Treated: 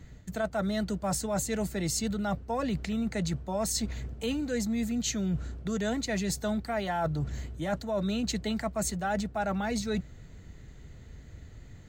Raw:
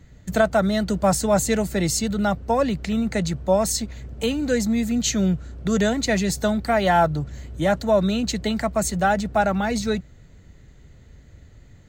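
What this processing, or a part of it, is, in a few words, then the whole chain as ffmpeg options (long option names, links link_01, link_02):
compression on the reversed sound: -af "bandreject=frequency=560:width=17,areverse,acompressor=threshold=-28dB:ratio=6,areverse"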